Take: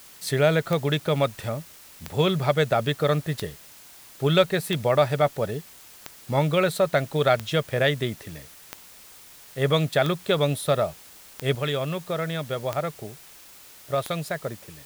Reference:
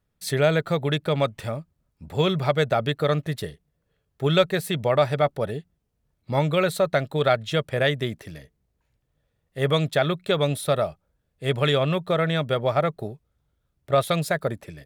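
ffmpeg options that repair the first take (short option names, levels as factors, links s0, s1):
-af "adeclick=t=4,afwtdn=0.004,asetnsamples=n=441:p=0,asendcmd='11.55 volume volume 5.5dB',volume=1"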